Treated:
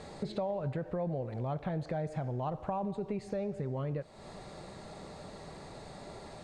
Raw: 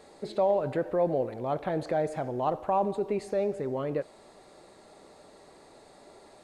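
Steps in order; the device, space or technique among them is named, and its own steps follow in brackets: jukebox (low-pass 7.7 kHz 12 dB/octave; resonant low shelf 220 Hz +8.5 dB, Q 1.5; compression 4:1, threshold -41 dBFS, peak gain reduction 16 dB); trim +6 dB

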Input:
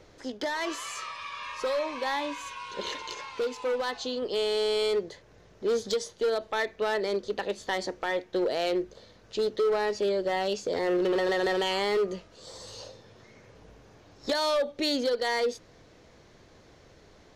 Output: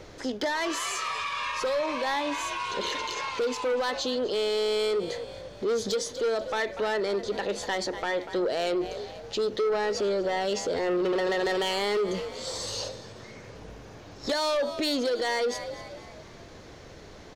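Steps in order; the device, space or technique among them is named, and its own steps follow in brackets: 11.45–12.89 s: treble shelf 3.6 kHz +4 dB; frequency-shifting echo 242 ms, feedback 47%, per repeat +51 Hz, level -19 dB; soft clipper into limiter (saturation -23.5 dBFS, distortion -18 dB; peak limiter -31 dBFS, peak gain reduction 7 dB); trim +8.5 dB

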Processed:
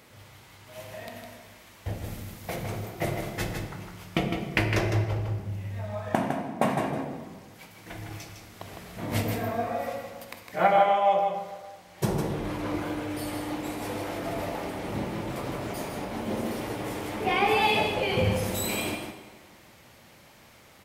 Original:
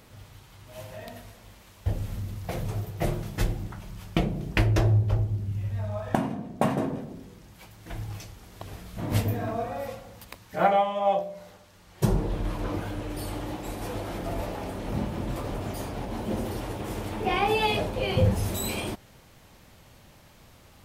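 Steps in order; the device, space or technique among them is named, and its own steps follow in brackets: PA in a hall (high-pass 180 Hz 6 dB/octave; peaking EQ 2.1 kHz +4.5 dB 0.39 oct; delay 157 ms -6 dB; reverberation RT60 1.7 s, pre-delay 18 ms, DRR 7 dB); 2.04–2.56 s: treble shelf 8 kHz +6 dB

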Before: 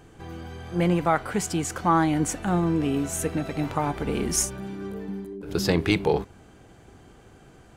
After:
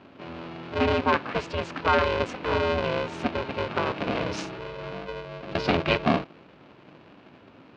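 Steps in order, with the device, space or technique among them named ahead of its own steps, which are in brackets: ring modulator pedal into a guitar cabinet (polarity switched at an audio rate 250 Hz; cabinet simulation 100–3900 Hz, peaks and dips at 260 Hz +9 dB, 1.9 kHz -6 dB, 3.4 kHz -5 dB); peaking EQ 2.7 kHz +5.5 dB 1.7 oct; trim -1.5 dB

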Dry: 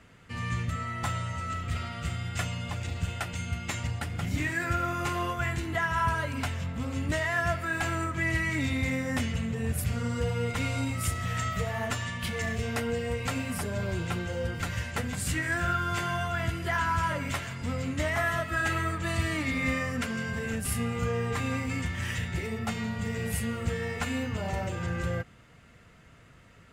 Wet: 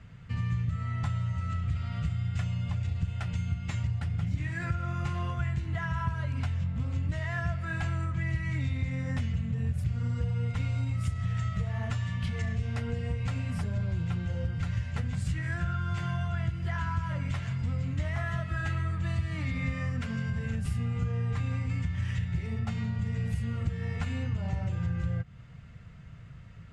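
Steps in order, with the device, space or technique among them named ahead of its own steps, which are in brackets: jukebox (low-pass 6.1 kHz 12 dB/octave; resonant low shelf 210 Hz +11 dB, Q 1.5; compression 3:1, threshold -27 dBFS, peak gain reduction 12 dB); trim -2.5 dB

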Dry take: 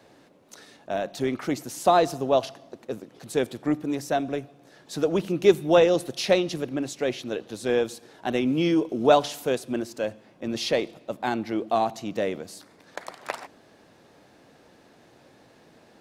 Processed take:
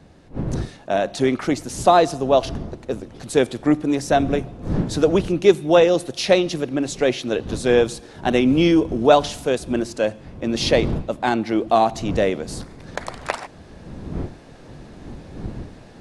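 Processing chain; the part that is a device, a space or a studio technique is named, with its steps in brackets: smartphone video outdoors (wind noise 220 Hz -39 dBFS; level rider gain up to 8 dB; AAC 96 kbps 24 kHz)

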